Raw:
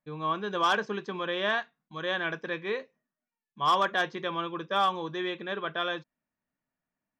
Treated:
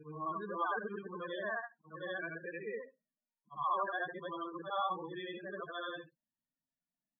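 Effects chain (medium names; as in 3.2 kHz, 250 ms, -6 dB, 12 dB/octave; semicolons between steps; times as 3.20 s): short-time spectra conjugated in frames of 196 ms; loudest bins only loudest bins 16; trim -5 dB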